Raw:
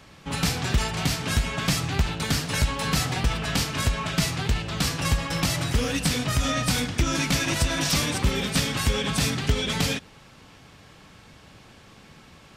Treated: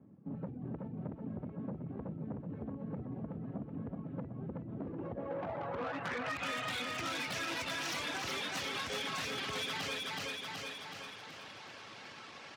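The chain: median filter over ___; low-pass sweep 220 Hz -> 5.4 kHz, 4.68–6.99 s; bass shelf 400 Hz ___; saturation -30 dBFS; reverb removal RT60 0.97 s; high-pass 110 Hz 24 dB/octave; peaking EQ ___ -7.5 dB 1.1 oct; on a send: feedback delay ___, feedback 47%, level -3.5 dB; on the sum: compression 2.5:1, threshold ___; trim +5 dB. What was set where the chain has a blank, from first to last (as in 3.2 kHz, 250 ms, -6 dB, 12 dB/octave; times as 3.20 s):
9 samples, -10 dB, 160 Hz, 374 ms, -44 dBFS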